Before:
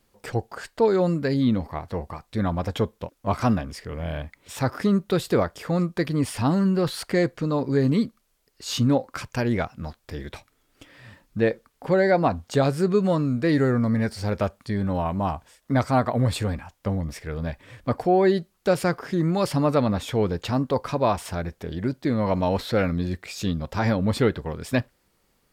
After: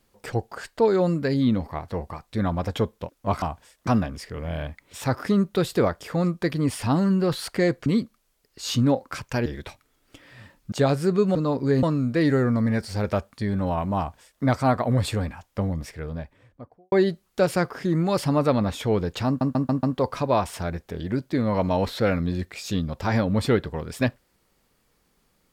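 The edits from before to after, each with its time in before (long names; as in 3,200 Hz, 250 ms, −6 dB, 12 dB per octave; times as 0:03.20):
0:07.41–0:07.89: move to 0:13.11
0:09.49–0:10.13: remove
0:11.39–0:12.48: remove
0:15.26–0:15.71: duplicate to 0:03.42
0:16.97–0:18.20: fade out and dull
0:20.55: stutter 0.14 s, 5 plays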